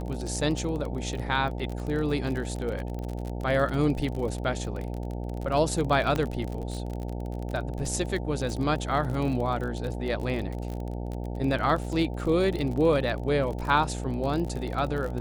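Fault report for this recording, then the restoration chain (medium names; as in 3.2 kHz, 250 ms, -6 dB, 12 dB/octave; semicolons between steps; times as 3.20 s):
buzz 60 Hz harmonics 15 -33 dBFS
crackle 34 per s -31 dBFS
6.16 s: pop -15 dBFS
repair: de-click; de-hum 60 Hz, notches 15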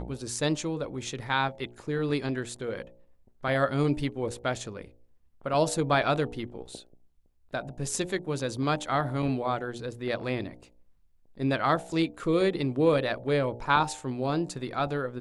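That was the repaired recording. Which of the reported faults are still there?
6.16 s: pop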